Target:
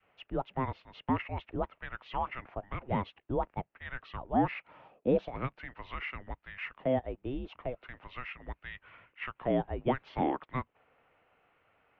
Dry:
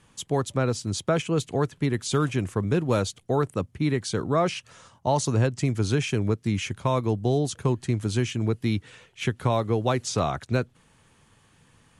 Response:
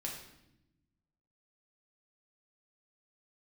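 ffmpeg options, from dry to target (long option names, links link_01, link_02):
-af "highpass=frequency=540:width_type=q:width=0.5412,highpass=frequency=540:width_type=q:width=1.307,lowpass=frequency=3100:width_type=q:width=0.5176,lowpass=frequency=3100:width_type=q:width=0.7071,lowpass=frequency=3100:width_type=q:width=1.932,afreqshift=-390,adynamicequalizer=threshold=0.01:dfrequency=580:dqfactor=0.79:tfrequency=580:tqfactor=0.79:attack=5:release=100:ratio=0.375:range=3:mode=boostabove:tftype=bell,volume=-5dB"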